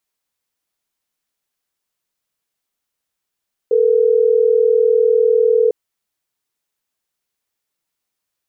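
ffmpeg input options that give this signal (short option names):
-f lavfi -i "aevalsrc='0.224*(sin(2*PI*440*t)+sin(2*PI*480*t))*clip(min(mod(t,6),2-mod(t,6))/0.005,0,1)':d=3.12:s=44100"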